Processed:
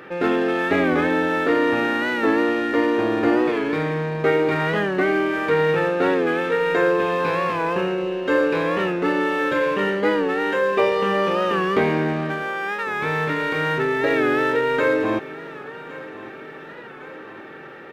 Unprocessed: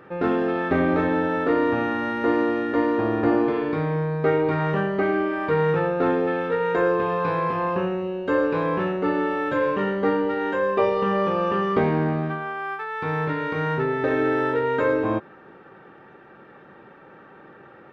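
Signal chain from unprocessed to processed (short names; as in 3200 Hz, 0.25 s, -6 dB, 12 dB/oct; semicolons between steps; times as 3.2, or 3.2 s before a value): EQ curve 110 Hz 0 dB, 350 Hz +7 dB, 1100 Hz +5 dB, 2200 Hz +13 dB; in parallel at -2 dB: soft clip -34 dBFS, distortion -3 dB; on the sum: feedback echo 1.111 s, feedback 58%, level -17.5 dB; record warp 45 rpm, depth 100 cents; gain -5 dB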